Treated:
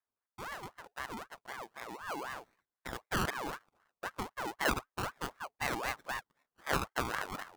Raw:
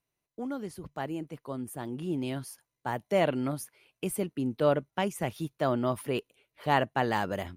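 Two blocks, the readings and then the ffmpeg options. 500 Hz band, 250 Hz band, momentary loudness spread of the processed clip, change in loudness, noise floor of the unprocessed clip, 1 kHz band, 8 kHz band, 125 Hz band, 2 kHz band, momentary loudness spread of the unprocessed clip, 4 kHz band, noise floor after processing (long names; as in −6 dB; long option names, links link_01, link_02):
−12.5 dB, −12.5 dB, 12 LU, −7.0 dB, below −85 dBFS, −5.5 dB, −2.5 dB, −10.5 dB, 0.0 dB, 12 LU, −1.5 dB, below −85 dBFS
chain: -af "highpass=160,lowpass=2300,acrusher=samples=32:mix=1:aa=0.000001:lfo=1:lforange=19.2:lforate=0.3,aeval=exprs='val(0)*sin(2*PI*1000*n/s+1000*0.45/3.9*sin(2*PI*3.9*n/s))':channel_layout=same,volume=-4.5dB"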